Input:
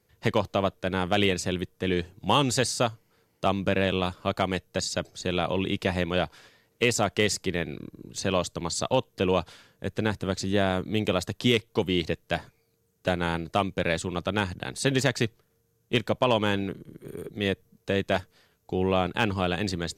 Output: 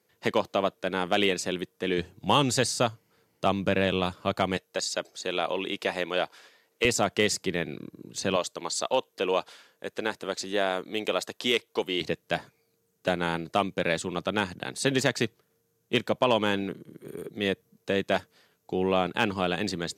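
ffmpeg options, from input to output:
-af "asetnsamples=n=441:p=0,asendcmd='1.98 highpass f 100;4.57 highpass f 360;6.85 highpass f 140;8.36 highpass f 380;12.01 highpass f 160',highpass=220"

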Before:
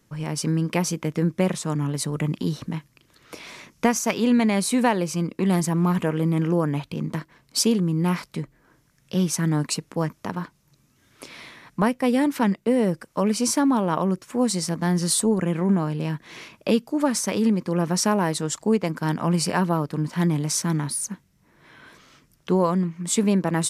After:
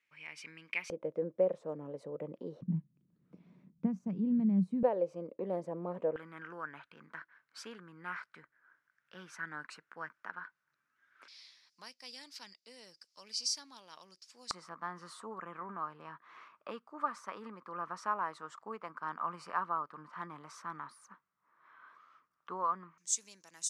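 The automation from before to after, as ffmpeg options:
-af "asetnsamples=n=441:p=0,asendcmd='0.9 bandpass f 530;2.61 bandpass f 180;4.83 bandpass f 540;6.16 bandpass f 1500;11.28 bandpass f 4900;14.51 bandpass f 1200;22.98 bandpass f 6300',bandpass=f=2.3k:t=q:w=6:csg=0"

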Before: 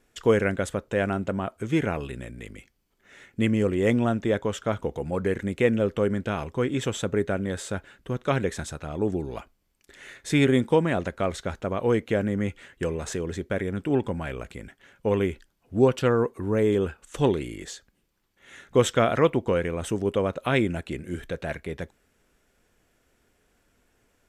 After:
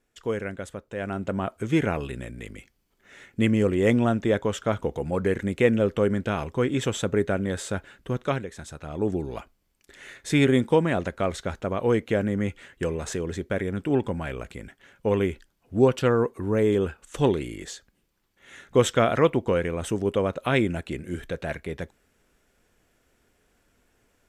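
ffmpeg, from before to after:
-af "volume=13dB,afade=t=in:st=0.97:d=0.47:silence=0.334965,afade=t=out:st=8.21:d=0.26:silence=0.237137,afade=t=in:st=8.47:d=0.62:silence=0.266073"

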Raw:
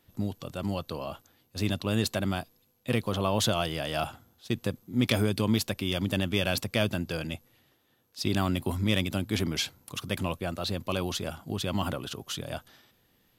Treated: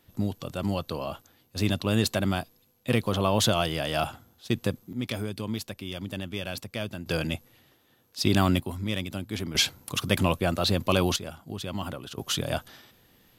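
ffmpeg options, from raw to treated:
-af "asetnsamples=n=441:p=0,asendcmd='4.93 volume volume -6.5dB;7.06 volume volume 5dB;8.6 volume volume -4dB;9.55 volume volume 7dB;11.16 volume volume -3.5dB;12.18 volume volume 7dB',volume=3dB"

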